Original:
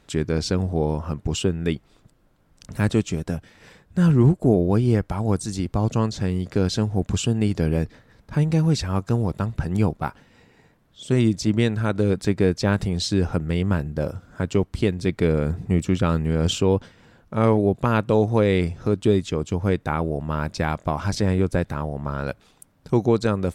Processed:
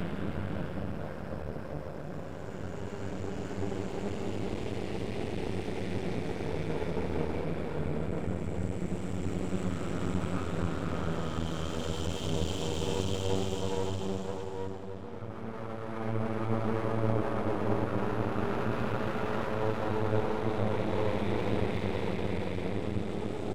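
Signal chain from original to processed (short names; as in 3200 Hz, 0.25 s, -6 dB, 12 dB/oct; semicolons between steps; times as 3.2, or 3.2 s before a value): Paulstretch 4.5×, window 1.00 s, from 13.7; outdoor echo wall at 230 m, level -13 dB; half-wave rectifier; gain -7.5 dB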